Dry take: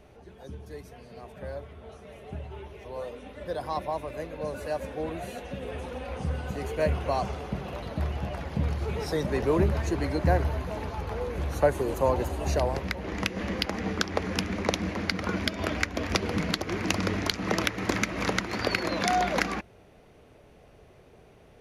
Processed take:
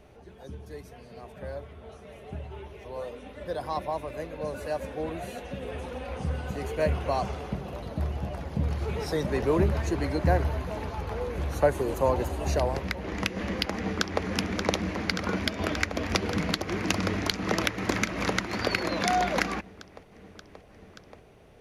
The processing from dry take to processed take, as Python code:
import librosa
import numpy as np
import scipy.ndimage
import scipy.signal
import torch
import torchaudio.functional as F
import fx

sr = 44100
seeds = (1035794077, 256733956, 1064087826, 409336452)

y = fx.peak_eq(x, sr, hz=2200.0, db=-5.0, octaves=2.4, at=(7.55, 8.71))
y = fx.echo_throw(y, sr, start_s=13.73, length_s=0.5, ms=580, feedback_pct=85, wet_db=-7.0)